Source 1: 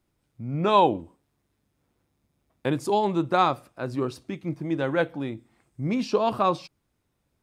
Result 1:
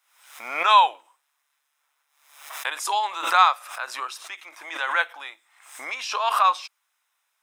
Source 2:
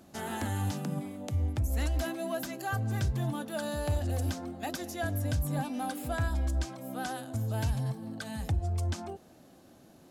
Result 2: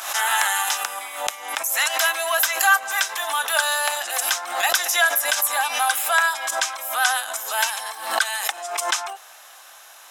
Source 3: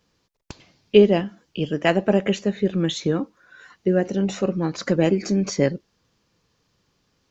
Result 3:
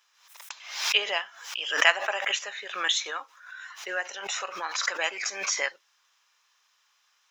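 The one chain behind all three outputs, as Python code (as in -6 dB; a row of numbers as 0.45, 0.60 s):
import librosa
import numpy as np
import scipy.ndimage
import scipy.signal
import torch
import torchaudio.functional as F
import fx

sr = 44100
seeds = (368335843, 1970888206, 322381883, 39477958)

y = scipy.signal.sosfilt(scipy.signal.butter(4, 980.0, 'highpass', fs=sr, output='sos'), x)
y = fx.notch(y, sr, hz=4500.0, q=7.1)
y = fx.pre_swell(y, sr, db_per_s=82.0)
y = librosa.util.normalize(y) * 10.0 ** (-3 / 20.0)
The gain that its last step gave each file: +8.0, +21.0, +4.5 dB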